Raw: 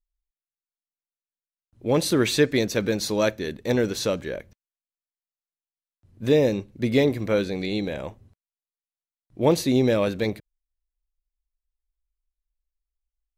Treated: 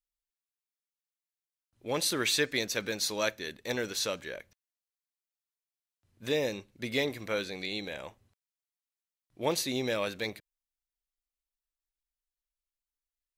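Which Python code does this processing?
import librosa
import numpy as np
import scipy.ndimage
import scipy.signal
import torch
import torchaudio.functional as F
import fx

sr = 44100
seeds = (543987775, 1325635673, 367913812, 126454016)

y = fx.tilt_shelf(x, sr, db=-7.5, hz=670.0)
y = F.gain(torch.from_numpy(y), -8.5).numpy()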